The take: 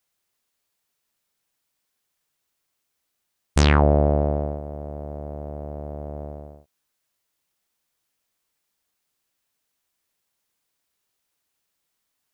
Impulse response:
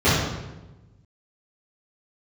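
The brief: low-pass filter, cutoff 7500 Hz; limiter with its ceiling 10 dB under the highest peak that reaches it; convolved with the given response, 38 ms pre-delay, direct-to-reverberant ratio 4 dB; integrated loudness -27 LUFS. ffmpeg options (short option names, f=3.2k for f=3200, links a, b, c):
-filter_complex "[0:a]lowpass=7.5k,alimiter=limit=-13.5dB:level=0:latency=1,asplit=2[a][b];[1:a]atrim=start_sample=2205,adelay=38[c];[b][c]afir=irnorm=-1:irlink=0,volume=-26dB[d];[a][d]amix=inputs=2:normalize=0,volume=-4dB"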